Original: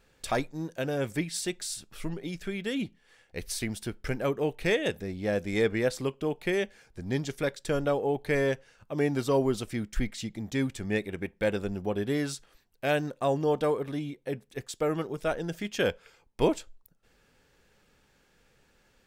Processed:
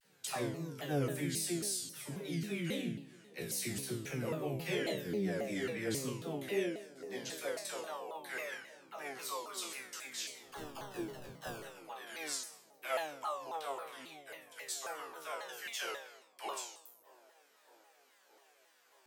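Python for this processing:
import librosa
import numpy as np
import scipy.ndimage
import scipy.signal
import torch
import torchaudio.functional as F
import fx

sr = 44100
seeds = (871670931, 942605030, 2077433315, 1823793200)

p1 = fx.high_shelf(x, sr, hz=7800.0, db=11.0)
p2 = fx.over_compress(p1, sr, threshold_db=-33.0, ratio=-1.0)
p3 = p1 + (p2 * librosa.db_to_amplitude(-1.0))
p4 = fx.filter_sweep_highpass(p3, sr, from_hz=150.0, to_hz=930.0, start_s=6.11, end_s=7.84, q=1.5)
p5 = fx.sample_hold(p4, sr, seeds[0], rate_hz=2200.0, jitter_pct=0, at=(10.42, 11.61))
p6 = fx.resonator_bank(p5, sr, root=47, chord='minor', decay_s=0.59)
p7 = fx.dispersion(p6, sr, late='lows', ms=54.0, hz=480.0)
p8 = p7 + fx.echo_wet_bandpass(p7, sr, ms=618, feedback_pct=75, hz=430.0, wet_db=-20, dry=0)
p9 = fx.vibrato_shape(p8, sr, shape='saw_down', rate_hz=3.7, depth_cents=250.0)
y = p9 * librosa.db_to_amplitude(6.0)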